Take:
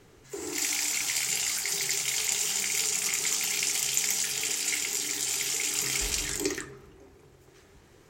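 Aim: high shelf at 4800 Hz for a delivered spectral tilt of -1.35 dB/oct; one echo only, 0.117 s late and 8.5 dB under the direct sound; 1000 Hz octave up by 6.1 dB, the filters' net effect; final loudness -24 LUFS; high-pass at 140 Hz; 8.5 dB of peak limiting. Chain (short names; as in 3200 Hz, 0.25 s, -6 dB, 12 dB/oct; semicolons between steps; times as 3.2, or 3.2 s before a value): HPF 140 Hz; bell 1000 Hz +8.5 dB; high shelf 4800 Hz -8 dB; limiter -22 dBFS; echo 0.117 s -8.5 dB; gain +7.5 dB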